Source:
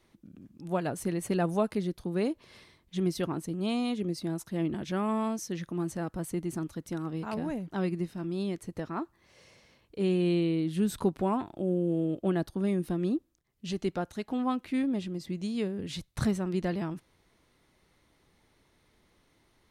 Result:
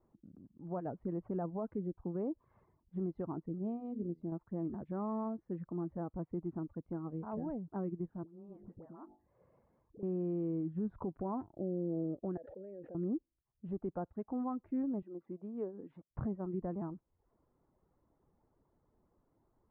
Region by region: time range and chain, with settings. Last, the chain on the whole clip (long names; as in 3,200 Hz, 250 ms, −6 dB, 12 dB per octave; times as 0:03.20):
0:03.58–0:04.32: parametric band 1,400 Hz −14.5 dB 1.5 octaves + hum removal 80.49 Hz, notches 7
0:08.23–0:10.03: hum removal 50.56 Hz, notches 17 + downward compressor 20 to 1, threshold −40 dBFS + all-pass dispersion highs, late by 73 ms, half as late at 800 Hz
0:12.37–0:12.95: formant filter e + notch filter 270 Hz, Q 7.8 + envelope flattener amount 100%
0:15.02–0:16.11: Chebyshev high-pass filter 320 Hz + linearly interpolated sample-rate reduction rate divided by 3×
whole clip: reverb reduction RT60 0.53 s; low-pass filter 1,100 Hz 24 dB per octave; brickwall limiter −24 dBFS; level −5 dB